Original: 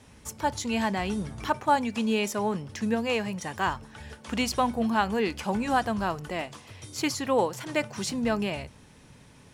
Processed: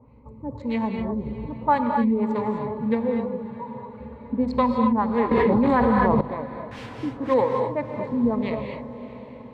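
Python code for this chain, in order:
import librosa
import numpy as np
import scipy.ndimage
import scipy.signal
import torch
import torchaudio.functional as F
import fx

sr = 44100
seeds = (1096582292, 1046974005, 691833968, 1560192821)

y = fx.wiener(x, sr, points=25)
y = fx.ripple_eq(y, sr, per_octave=0.99, db=11)
y = fx.spec_topn(y, sr, count=2, at=(3.26, 3.88))
y = fx.quant_dither(y, sr, seeds[0], bits=6, dither='triangular', at=(6.71, 7.34))
y = fx.filter_lfo_lowpass(y, sr, shape='sine', hz=1.8, low_hz=260.0, high_hz=2900.0, q=1.3)
y = fx.echo_diffused(y, sr, ms=632, feedback_pct=58, wet_db=-15.0)
y = fx.rev_gated(y, sr, seeds[1], gate_ms=280, shape='rising', drr_db=3.0)
y = fx.env_flatten(y, sr, amount_pct=100, at=(5.31, 6.21))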